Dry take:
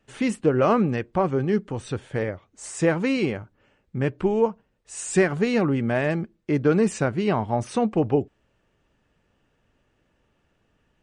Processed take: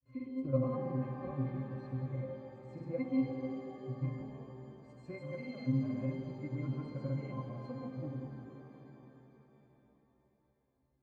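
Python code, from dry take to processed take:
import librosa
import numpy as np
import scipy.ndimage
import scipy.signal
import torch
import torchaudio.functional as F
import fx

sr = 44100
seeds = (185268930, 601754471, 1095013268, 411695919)

y = fx.octave_resonator(x, sr, note='C', decay_s=0.41)
y = fx.granulator(y, sr, seeds[0], grain_ms=100.0, per_s=20.0, spray_ms=100.0, spread_st=0)
y = fx.rev_shimmer(y, sr, seeds[1], rt60_s=3.6, semitones=7, shimmer_db=-8, drr_db=4.0)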